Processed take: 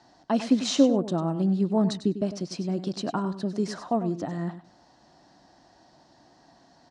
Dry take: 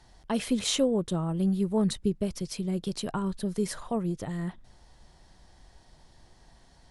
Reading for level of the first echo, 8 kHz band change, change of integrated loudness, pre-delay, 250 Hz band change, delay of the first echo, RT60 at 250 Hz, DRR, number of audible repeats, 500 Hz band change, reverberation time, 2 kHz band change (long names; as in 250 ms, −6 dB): −12.0 dB, −2.5 dB, +3.0 dB, no reverb audible, +4.0 dB, 99 ms, no reverb audible, no reverb audible, 2, +2.5 dB, no reverb audible, 0.0 dB